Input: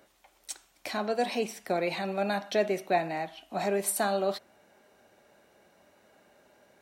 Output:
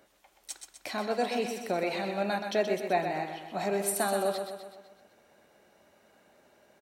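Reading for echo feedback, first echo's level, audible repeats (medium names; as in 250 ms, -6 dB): 53%, -7.0 dB, 6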